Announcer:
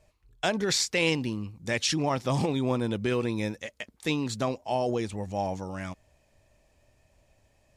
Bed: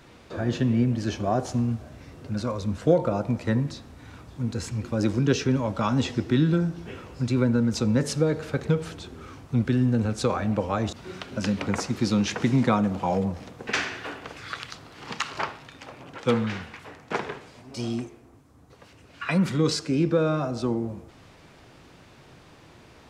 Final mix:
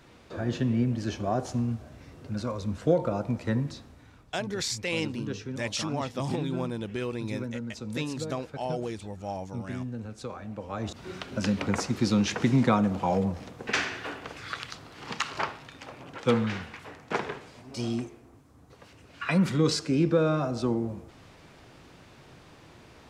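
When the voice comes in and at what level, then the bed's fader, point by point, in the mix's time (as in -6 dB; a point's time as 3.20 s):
3.90 s, -5.0 dB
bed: 3.81 s -3.5 dB
4.30 s -13.5 dB
10.55 s -13.5 dB
11.04 s -1 dB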